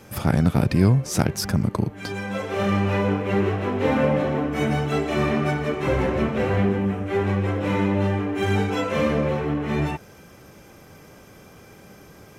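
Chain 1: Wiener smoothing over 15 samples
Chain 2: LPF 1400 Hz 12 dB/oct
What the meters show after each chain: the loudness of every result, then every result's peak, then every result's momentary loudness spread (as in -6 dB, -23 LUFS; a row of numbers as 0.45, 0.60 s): -23.5, -23.5 LUFS; -5.0, -6.0 dBFS; 6, 5 LU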